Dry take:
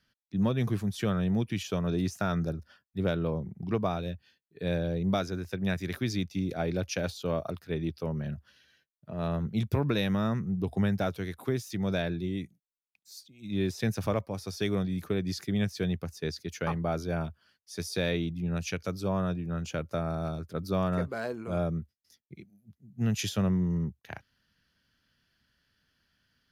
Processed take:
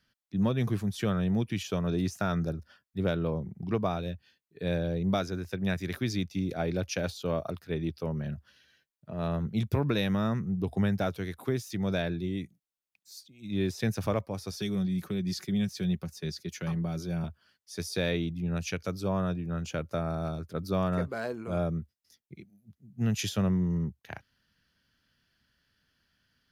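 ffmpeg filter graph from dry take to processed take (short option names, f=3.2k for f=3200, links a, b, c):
-filter_complex "[0:a]asettb=1/sr,asplit=3[a][b][c];[a]atrim=end=14.514[d];[b]atrim=start=14.51:end=17.24,asetpts=PTS-STARTPTS,afade=t=in:d=0.004:c=qsin,afade=t=out:st=2.726:d=0.004:c=qsin,acrossover=split=260|3000[e][f][g];[f]acompressor=threshold=-41dB:ratio=4:attack=3.2:release=140:knee=2.83:detection=peak[h];[e][h][g]amix=inputs=3:normalize=0,aecho=1:1:5.4:0.46,atrim=end_sample=120393[i];[c]atrim=start=17.236[j];[d][i]acrossfade=d=0.004:c1=hsin:c2=qsin[k];[k][j]acrossfade=d=0.004:c1=qsin:c2=hsin"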